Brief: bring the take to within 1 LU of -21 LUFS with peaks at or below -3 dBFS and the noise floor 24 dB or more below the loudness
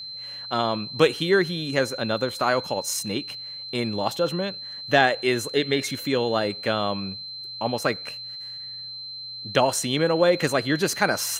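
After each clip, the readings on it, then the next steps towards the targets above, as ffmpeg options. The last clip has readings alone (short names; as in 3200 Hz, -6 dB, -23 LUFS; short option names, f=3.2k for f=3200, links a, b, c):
steady tone 4100 Hz; tone level -34 dBFS; loudness -24.5 LUFS; peak -4.0 dBFS; loudness target -21.0 LUFS
-> -af "bandreject=f=4.1k:w=30"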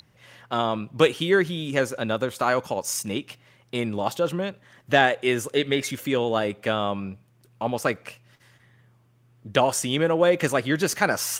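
steady tone none; loudness -24.5 LUFS; peak -4.5 dBFS; loudness target -21.0 LUFS
-> -af "volume=3.5dB,alimiter=limit=-3dB:level=0:latency=1"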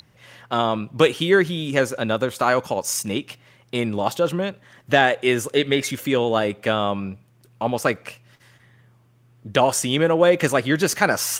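loudness -21.0 LUFS; peak -3.0 dBFS; noise floor -57 dBFS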